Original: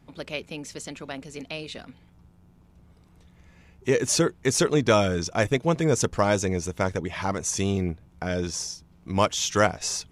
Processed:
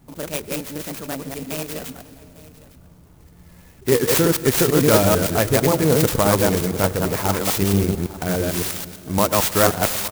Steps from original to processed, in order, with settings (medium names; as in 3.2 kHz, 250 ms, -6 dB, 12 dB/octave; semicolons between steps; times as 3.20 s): chunks repeated in reverse 112 ms, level -1 dB; in parallel at -3 dB: peak limiter -13.5 dBFS, peak gain reduction 9.5 dB; on the sum: delay 855 ms -19.5 dB; reverberation RT60 3.6 s, pre-delay 92 ms, DRR 15.5 dB; sampling jitter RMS 0.087 ms